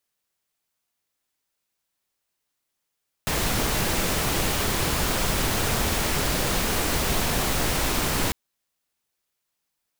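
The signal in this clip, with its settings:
noise pink, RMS −24 dBFS 5.05 s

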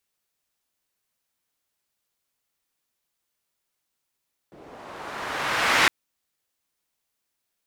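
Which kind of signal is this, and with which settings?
filter sweep on noise pink, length 1.36 s bandpass, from 350 Hz, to 1,900 Hz, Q 1.1, linear, gain ramp +32 dB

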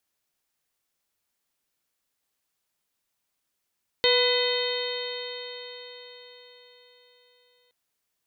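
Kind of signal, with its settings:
stiff-string partials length 3.67 s, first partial 489 Hz, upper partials −9.5/−14/−5.5/−11/−5/−4/−4 dB, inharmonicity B 0.0032, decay 4.70 s, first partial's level −21 dB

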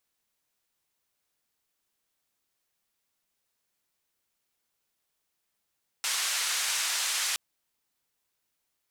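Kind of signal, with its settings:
band-limited noise 1,200–8,400 Hz, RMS −29.5 dBFS 1.32 s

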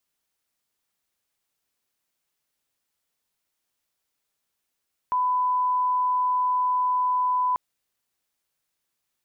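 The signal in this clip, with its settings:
line-up tone −20 dBFS 2.44 s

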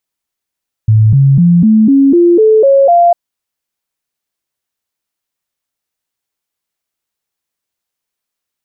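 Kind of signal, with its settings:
stepped sweep 109 Hz up, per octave 3, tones 9, 0.25 s, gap 0.00 s −3.5 dBFS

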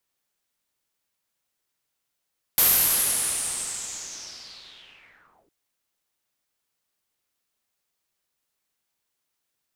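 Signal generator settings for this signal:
filter sweep on noise white, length 2.91 s lowpass, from 13,000 Hz, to 310 Hz, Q 5.3, linear, gain ramp −37 dB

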